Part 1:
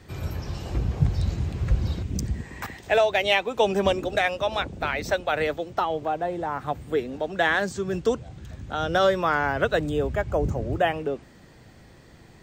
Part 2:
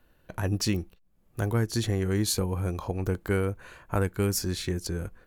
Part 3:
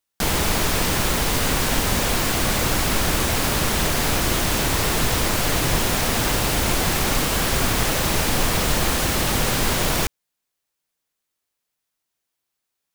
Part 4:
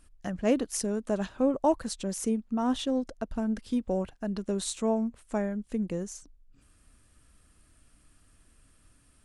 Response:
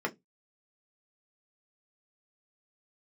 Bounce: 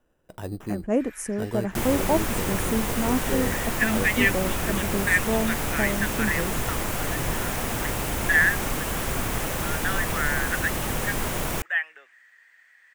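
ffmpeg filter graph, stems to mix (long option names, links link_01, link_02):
-filter_complex "[0:a]highpass=frequency=1800:width_type=q:width=6.5,adelay=900,volume=-7dB[link_01];[1:a]acrossover=split=3300[link_02][link_03];[link_03]acompressor=threshold=-38dB:ratio=4:attack=1:release=60[link_04];[link_02][link_04]amix=inputs=2:normalize=0,equalizer=frequency=490:width=0.42:gain=8,acrusher=samples=10:mix=1:aa=0.000001,volume=-9.5dB[link_05];[2:a]adelay=1550,volume=-6dB[link_06];[3:a]equalizer=frequency=3900:width=1.1:gain=-10.5,adelay=450,volume=2dB[link_07];[link_01][link_05][link_06][link_07]amix=inputs=4:normalize=0,equalizer=frequency=4400:width=1.4:gain=-8"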